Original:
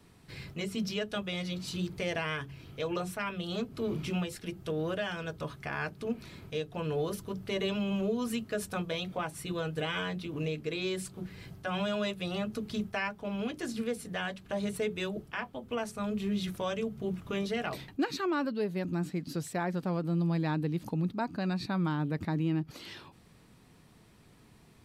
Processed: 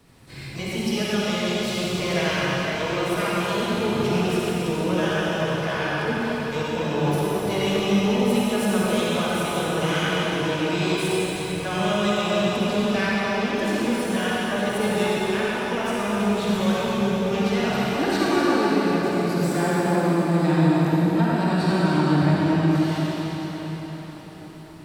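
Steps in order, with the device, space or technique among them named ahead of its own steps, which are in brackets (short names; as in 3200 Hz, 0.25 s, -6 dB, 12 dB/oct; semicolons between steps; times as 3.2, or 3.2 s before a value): shimmer-style reverb (harmoniser +12 st -11 dB; reverb RT60 5.6 s, pre-delay 43 ms, DRR -8 dB); gain +3 dB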